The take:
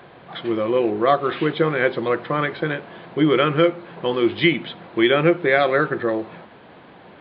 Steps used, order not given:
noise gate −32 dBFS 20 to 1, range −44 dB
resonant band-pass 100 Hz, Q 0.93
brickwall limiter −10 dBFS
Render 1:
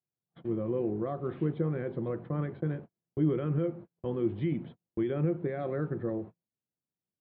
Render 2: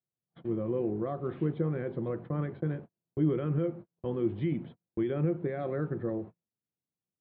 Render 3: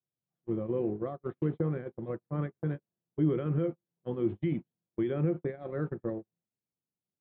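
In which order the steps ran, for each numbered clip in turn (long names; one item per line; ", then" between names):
noise gate, then brickwall limiter, then resonant band-pass
brickwall limiter, then noise gate, then resonant band-pass
brickwall limiter, then resonant band-pass, then noise gate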